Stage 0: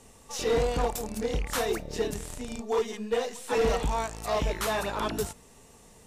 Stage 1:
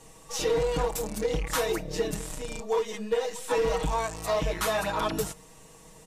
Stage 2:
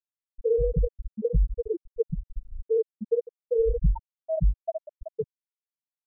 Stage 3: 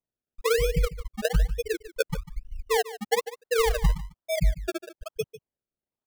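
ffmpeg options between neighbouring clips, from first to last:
ffmpeg -i in.wav -af "equalizer=frequency=1000:width_type=o:width=0.32:gain=2.5,aecho=1:1:6.3:0.95,acompressor=threshold=-23dB:ratio=4" out.wav
ffmpeg -i in.wav -filter_complex "[0:a]lowshelf=frequency=310:gain=10.5,asplit=2[link_01][link_02];[link_02]adelay=221.6,volume=-15dB,highshelf=frequency=4000:gain=-4.99[link_03];[link_01][link_03]amix=inputs=2:normalize=0,afftfilt=real='re*gte(hypot(re,im),0.631)':imag='im*gte(hypot(re,im),0.631)':win_size=1024:overlap=0.75" out.wav
ffmpeg -i in.wav -af "acrusher=samples=30:mix=1:aa=0.000001:lfo=1:lforange=30:lforate=1.1,aecho=1:1:147:0.168" out.wav

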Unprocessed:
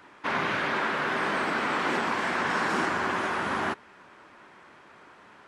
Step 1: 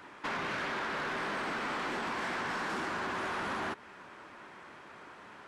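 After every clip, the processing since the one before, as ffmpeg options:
ffmpeg -i in.wav -af "acompressor=threshold=-30dB:ratio=10,asoftclip=type=tanh:threshold=-32dB,volume=1.5dB" out.wav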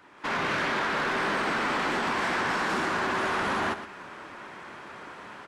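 ffmpeg -i in.wav -af "dynaudnorm=framelen=160:gausssize=3:maxgain=12dB,aecho=1:1:115:0.266,volume=-4.5dB" out.wav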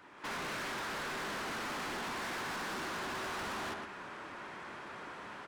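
ffmpeg -i in.wav -af "asoftclip=type=tanh:threshold=-36dB,volume=-2dB" out.wav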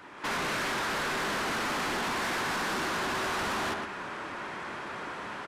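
ffmpeg -i in.wav -af "aresample=32000,aresample=44100,volume=8dB" out.wav

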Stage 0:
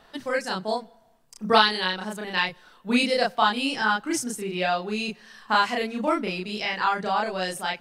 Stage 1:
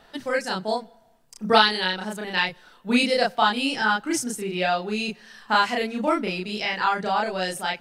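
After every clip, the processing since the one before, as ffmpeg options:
ffmpeg -i in.wav -af "bandreject=frequency=1100:width=12,volume=1.5dB" out.wav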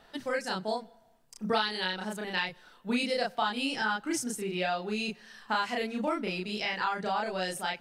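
ffmpeg -i in.wav -af "acompressor=threshold=-23dB:ratio=2.5,volume=-4.5dB" out.wav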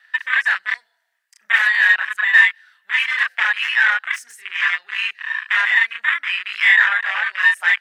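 ffmpeg -i in.wav -af "aeval=exprs='0.178*sin(PI/2*3.98*val(0)/0.178)':channel_layout=same,highpass=frequency=1800:width_type=q:width=7,afwtdn=0.126,volume=-1.5dB" out.wav

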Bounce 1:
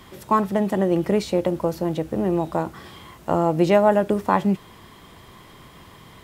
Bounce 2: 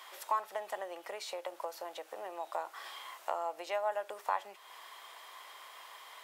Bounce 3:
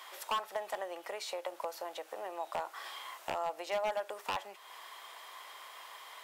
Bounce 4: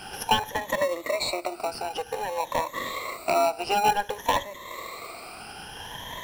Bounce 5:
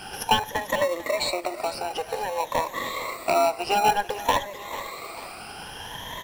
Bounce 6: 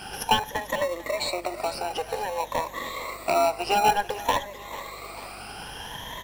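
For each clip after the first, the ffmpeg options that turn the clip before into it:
ffmpeg -i in.wav -af "acompressor=threshold=-28dB:ratio=3,highpass=frequency=650:width=0.5412,highpass=frequency=650:width=1.3066,volume=-2dB" out.wav
ffmpeg -i in.wav -af "aeval=exprs='0.0422*(abs(mod(val(0)/0.0422+3,4)-2)-1)':channel_layout=same,volume=1.5dB" out.wav
ffmpeg -i in.wav -filter_complex "[0:a]afftfilt=real='re*pow(10,23/40*sin(2*PI*(1.1*log(max(b,1)*sr/1024/100)/log(2)-(0.54)*(pts-256)/sr)))':imag='im*pow(10,23/40*sin(2*PI*(1.1*log(max(b,1)*sr/1024/100)/log(2)-(0.54)*(pts-256)/sr)))':win_size=1024:overlap=0.75,asplit=2[link_01][link_02];[link_02]acrusher=samples=27:mix=1:aa=0.000001,volume=-5.5dB[link_03];[link_01][link_03]amix=inputs=2:normalize=0,volume=5dB" out.wav
ffmpeg -i in.wav -af "aecho=1:1:443|886|1329|1772:0.178|0.08|0.036|0.0162,volume=1.5dB" out.wav
ffmpeg -i in.wav -af "tremolo=f=0.53:d=0.3,aeval=exprs='val(0)+0.00282*(sin(2*PI*50*n/s)+sin(2*PI*2*50*n/s)/2+sin(2*PI*3*50*n/s)/3+sin(2*PI*4*50*n/s)/4+sin(2*PI*5*50*n/s)/5)':channel_layout=same" out.wav

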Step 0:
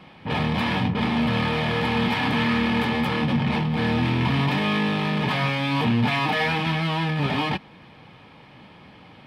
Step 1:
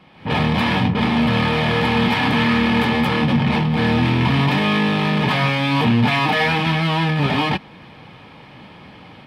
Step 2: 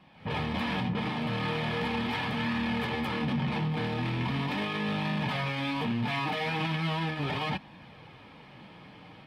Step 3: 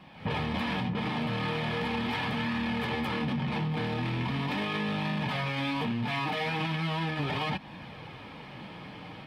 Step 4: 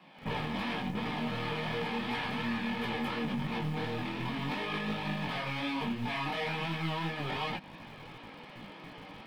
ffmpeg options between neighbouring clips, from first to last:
ffmpeg -i in.wav -af "dynaudnorm=framelen=120:gausssize=3:maxgain=9dB,volume=-3dB" out.wav
ffmpeg -i in.wav -af "alimiter=limit=-14.5dB:level=0:latency=1:release=19,flanger=delay=1.1:depth=5.6:regen=-56:speed=0.39:shape=sinusoidal,volume=-4.5dB" out.wav
ffmpeg -i in.wav -af "acompressor=threshold=-34dB:ratio=6,volume=6dB" out.wav
ffmpeg -i in.wav -filter_complex "[0:a]flanger=delay=17:depth=4:speed=2.8,acrossover=split=160|430|4400[link_01][link_02][link_03][link_04];[link_01]acrusher=bits=6:dc=4:mix=0:aa=0.000001[link_05];[link_05][link_02][link_03][link_04]amix=inputs=4:normalize=0" out.wav

